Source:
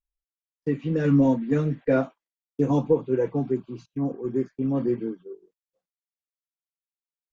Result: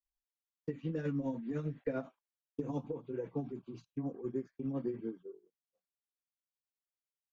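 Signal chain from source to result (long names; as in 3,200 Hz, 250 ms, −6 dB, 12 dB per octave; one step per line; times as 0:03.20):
downward compressor 4 to 1, threshold −26 dBFS, peak gain reduction 10 dB
granular cloud 155 ms, grains 10 per second, spray 12 ms, pitch spread up and down by 0 semitones
level −6 dB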